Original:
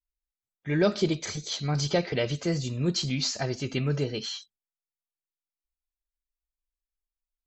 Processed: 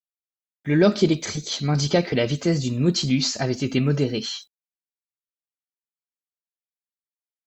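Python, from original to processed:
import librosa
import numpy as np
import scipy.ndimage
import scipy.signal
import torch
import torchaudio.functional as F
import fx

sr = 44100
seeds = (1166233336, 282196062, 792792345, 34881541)

y = fx.peak_eq(x, sr, hz=250.0, db=6.5, octaves=0.73)
y = fx.quant_dither(y, sr, seeds[0], bits=12, dither='none')
y = y * 10.0 ** (4.5 / 20.0)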